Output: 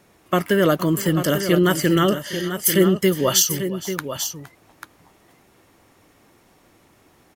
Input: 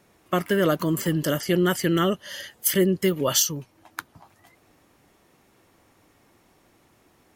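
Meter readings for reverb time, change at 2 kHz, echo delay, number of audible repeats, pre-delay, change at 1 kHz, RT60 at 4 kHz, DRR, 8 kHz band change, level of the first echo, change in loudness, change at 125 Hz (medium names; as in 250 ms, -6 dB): no reverb, +4.5 dB, 465 ms, 2, no reverb, +4.5 dB, no reverb, no reverb, +4.5 dB, -18.0 dB, +3.5 dB, +4.5 dB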